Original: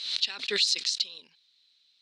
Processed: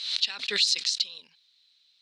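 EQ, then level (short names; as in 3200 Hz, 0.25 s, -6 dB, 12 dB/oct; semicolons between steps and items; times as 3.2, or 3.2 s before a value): bell 340 Hz -7.5 dB 0.79 oct; +1.5 dB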